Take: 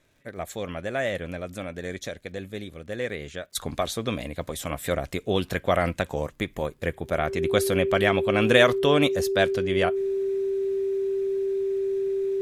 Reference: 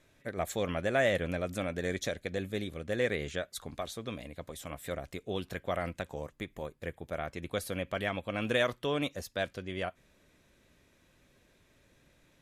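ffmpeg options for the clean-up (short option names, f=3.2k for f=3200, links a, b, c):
-af "adeclick=t=4,bandreject=f=390:w=30,asetnsamples=n=441:p=0,asendcmd='3.55 volume volume -11dB',volume=0dB"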